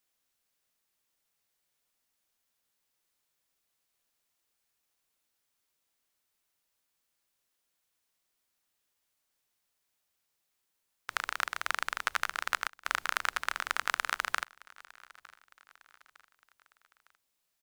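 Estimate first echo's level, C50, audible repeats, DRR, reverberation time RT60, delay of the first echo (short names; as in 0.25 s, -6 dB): -23.0 dB, none, 2, none, none, 0.907 s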